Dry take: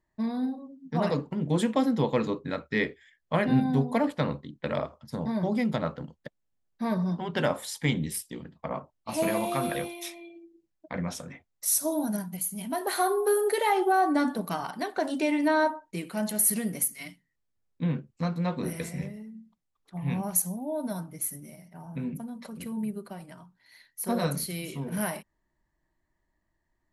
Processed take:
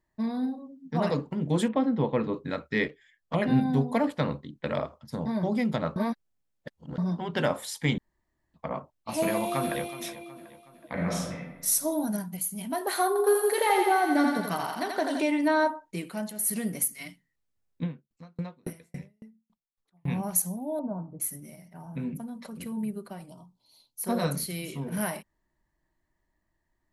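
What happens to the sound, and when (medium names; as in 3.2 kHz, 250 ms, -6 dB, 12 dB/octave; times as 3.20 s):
1.68–2.34 s: distance through air 340 m
2.88–3.42 s: touch-sensitive flanger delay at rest 10.2 ms, full sweep at -24 dBFS
5.96–6.98 s: reverse
7.98–8.54 s: room tone
9.25–9.92 s: echo throw 370 ms, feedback 50%, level -15 dB
10.93–11.66 s: reverb throw, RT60 1 s, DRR -3.5 dB
13.07–15.22 s: thinning echo 84 ms, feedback 72%, high-pass 470 Hz, level -3 dB
16.06–16.64 s: dip -9 dB, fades 0.29 s
17.83–20.08 s: sawtooth tremolo in dB decaying 3.6 Hz, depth 39 dB
20.79–21.20 s: inverse Chebyshev low-pass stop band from 2.1 kHz
23.28–24.02 s: Butterworth band-stop 1.8 kHz, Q 0.75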